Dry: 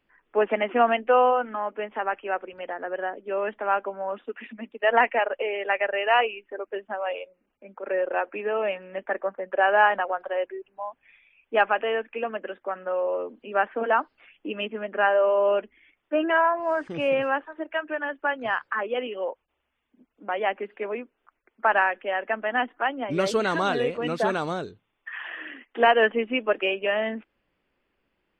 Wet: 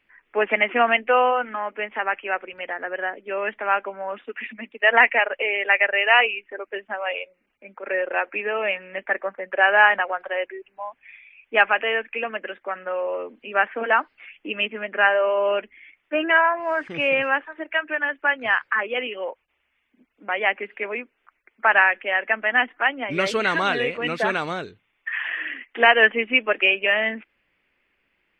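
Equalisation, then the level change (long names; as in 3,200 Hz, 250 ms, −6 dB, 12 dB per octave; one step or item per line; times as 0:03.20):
parametric band 2,200 Hz +13 dB 1.1 octaves
−1.0 dB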